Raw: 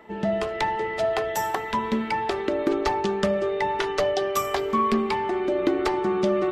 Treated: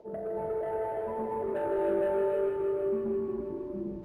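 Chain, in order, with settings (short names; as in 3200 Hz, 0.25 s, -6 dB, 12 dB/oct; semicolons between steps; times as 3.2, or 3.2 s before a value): graphic EQ 250/500/2000/4000 Hz -6/+3/-12/+5 dB; reverse; upward compressor, threshold -29 dBFS; reverse; limiter -18 dBFS, peak gain reduction 7 dB; modulation noise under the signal 33 dB; low-pass sweep 560 Hz -> 240 Hz, 2.95–5.75; requantised 12-bit, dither triangular; plain phase-vocoder stretch 0.62×; soft clip -23 dBFS, distortion -14 dB; on a send: narrowing echo 0.159 s, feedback 78%, band-pass 2300 Hz, level -4.5 dB; on the sum: non-linear reverb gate 0.34 s rising, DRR -1 dB; decimation joined by straight lines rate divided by 4×; gain -6 dB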